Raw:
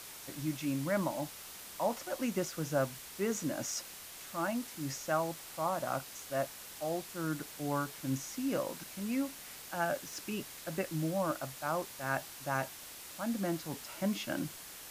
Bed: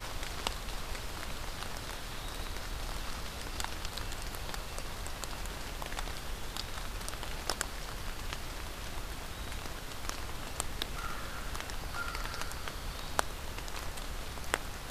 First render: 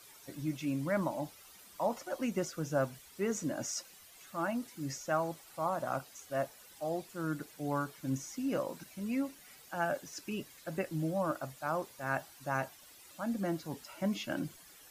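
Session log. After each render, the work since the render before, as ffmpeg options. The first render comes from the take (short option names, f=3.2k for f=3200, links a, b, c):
-af "afftdn=nr=12:nf=-49"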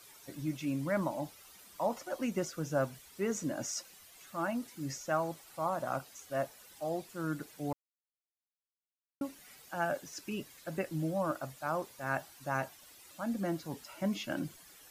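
-filter_complex "[0:a]asplit=3[a][b][c];[a]atrim=end=7.73,asetpts=PTS-STARTPTS,afade=t=out:st=7.726:d=0.004:c=hsin[d];[b]atrim=start=7.73:end=9.21,asetpts=PTS-STARTPTS,volume=0[e];[c]atrim=start=9.21,asetpts=PTS-STARTPTS,afade=t=in:d=0.004:c=hsin[f];[d][e][f]concat=n=3:v=0:a=1"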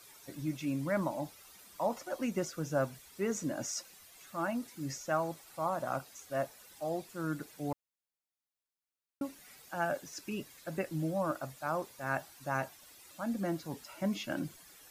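-af "bandreject=f=3k:w=28"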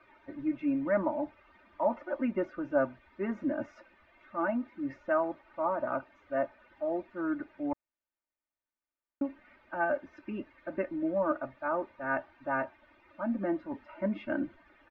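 -af "lowpass=f=2.2k:w=0.5412,lowpass=f=2.2k:w=1.3066,aecho=1:1:3.3:0.97"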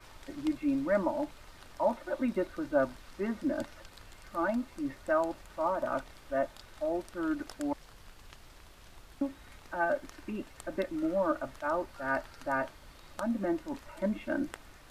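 -filter_complex "[1:a]volume=-13.5dB[a];[0:a][a]amix=inputs=2:normalize=0"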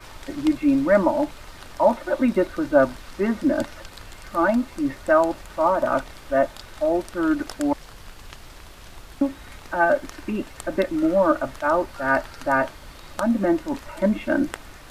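-af "volume=11dB"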